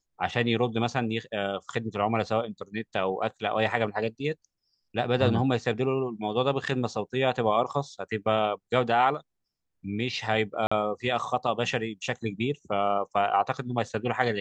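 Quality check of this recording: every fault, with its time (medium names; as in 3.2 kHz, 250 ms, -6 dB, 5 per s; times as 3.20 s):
10.67–10.71 s: dropout 45 ms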